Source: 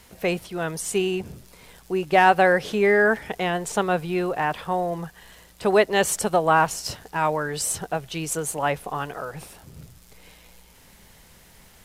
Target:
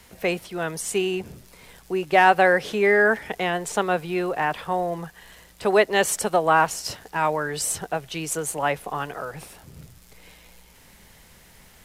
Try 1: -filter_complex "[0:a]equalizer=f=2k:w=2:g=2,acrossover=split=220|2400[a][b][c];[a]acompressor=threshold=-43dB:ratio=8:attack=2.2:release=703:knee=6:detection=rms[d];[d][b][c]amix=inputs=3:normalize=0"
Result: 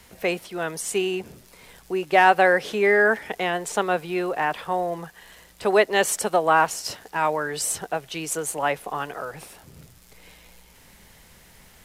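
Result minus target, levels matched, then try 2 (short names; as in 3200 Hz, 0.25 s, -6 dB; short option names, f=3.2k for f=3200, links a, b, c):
compressor: peak gain reduction +7.5 dB
-filter_complex "[0:a]equalizer=f=2k:w=2:g=2,acrossover=split=220|2400[a][b][c];[a]acompressor=threshold=-34.5dB:ratio=8:attack=2.2:release=703:knee=6:detection=rms[d];[d][b][c]amix=inputs=3:normalize=0"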